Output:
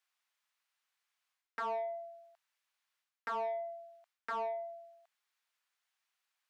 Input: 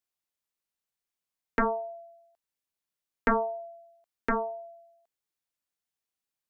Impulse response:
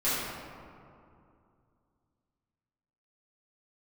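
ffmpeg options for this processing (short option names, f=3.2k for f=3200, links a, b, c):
-filter_complex "[0:a]highpass=1.1k,areverse,acompressor=threshold=-40dB:ratio=6,areverse,asplit=2[a][b];[b]highpass=f=720:p=1,volume=14dB,asoftclip=type=tanh:threshold=-36dB[c];[a][c]amix=inputs=2:normalize=0,lowpass=f=1.6k:p=1,volume=-6dB,volume=6dB"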